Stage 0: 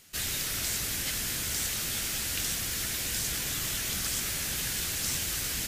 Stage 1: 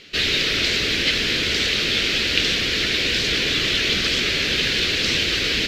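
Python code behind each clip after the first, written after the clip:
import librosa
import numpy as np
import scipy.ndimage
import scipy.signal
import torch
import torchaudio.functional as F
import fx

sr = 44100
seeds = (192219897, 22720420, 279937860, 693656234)

y = fx.curve_eq(x, sr, hz=(130.0, 440.0, 840.0, 2500.0, 4200.0, 9500.0), db=(0, 13, -3, 11, 9, -22))
y = y * librosa.db_to_amplitude(7.5)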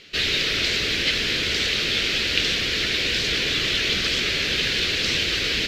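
y = fx.peak_eq(x, sr, hz=260.0, db=-2.5, octaves=0.94)
y = y * librosa.db_to_amplitude(-2.0)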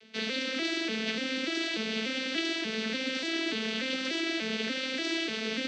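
y = fx.vocoder_arp(x, sr, chord='minor triad', root=57, every_ms=293)
y = y * librosa.db_to_amplitude(-8.0)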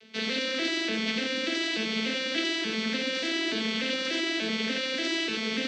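y = x + 10.0 ** (-5.5 / 20.0) * np.pad(x, (int(90 * sr / 1000.0), 0))[:len(x)]
y = y * librosa.db_to_amplitude(2.0)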